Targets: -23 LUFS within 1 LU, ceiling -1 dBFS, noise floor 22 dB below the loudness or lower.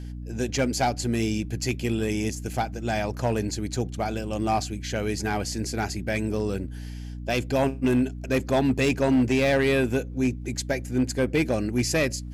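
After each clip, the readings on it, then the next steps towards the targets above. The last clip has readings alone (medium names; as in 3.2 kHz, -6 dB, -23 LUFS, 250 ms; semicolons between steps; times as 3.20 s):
clipped samples 0.9%; clipping level -16.0 dBFS; hum 60 Hz; highest harmonic 300 Hz; hum level -33 dBFS; loudness -26.0 LUFS; peak level -16.0 dBFS; loudness target -23.0 LUFS
-> clip repair -16 dBFS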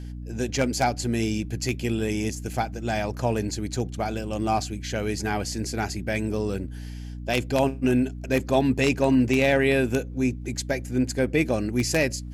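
clipped samples 0.0%; hum 60 Hz; highest harmonic 300 Hz; hum level -33 dBFS
-> hum notches 60/120/180/240/300 Hz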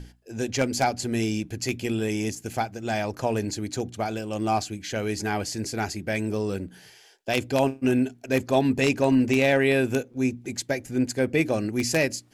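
hum not found; loudness -26.0 LUFS; peak level -6.5 dBFS; loudness target -23.0 LUFS
-> trim +3 dB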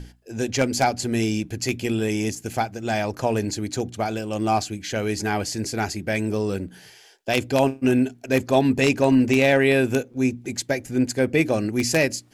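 loudness -23.0 LUFS; peak level -3.5 dBFS; noise floor -51 dBFS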